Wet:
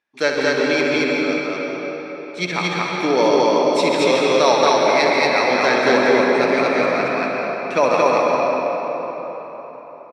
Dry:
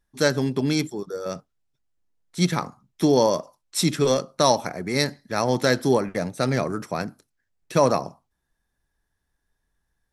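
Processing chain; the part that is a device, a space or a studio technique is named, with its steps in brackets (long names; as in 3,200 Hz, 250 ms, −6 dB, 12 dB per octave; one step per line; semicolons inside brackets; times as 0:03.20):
station announcement (band-pass filter 360–4,200 Hz; parametric band 2,400 Hz +11 dB 0.35 octaves; loudspeakers that aren't time-aligned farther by 23 metres −8 dB, 78 metres −1 dB; convolution reverb RT60 4.5 s, pre-delay 117 ms, DRR −2 dB)
level +2 dB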